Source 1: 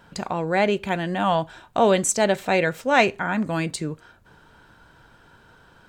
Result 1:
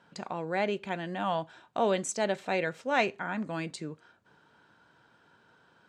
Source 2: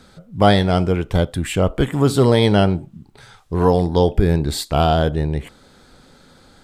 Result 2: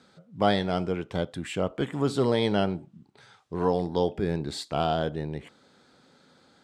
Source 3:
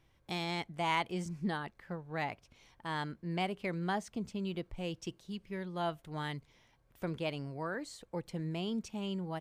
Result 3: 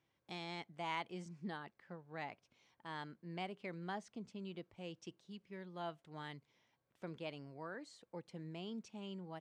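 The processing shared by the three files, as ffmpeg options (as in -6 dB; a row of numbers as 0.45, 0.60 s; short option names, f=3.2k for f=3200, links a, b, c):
-af "highpass=150,lowpass=7.3k,volume=-9dB"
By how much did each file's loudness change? -9.5, -10.0, -9.5 LU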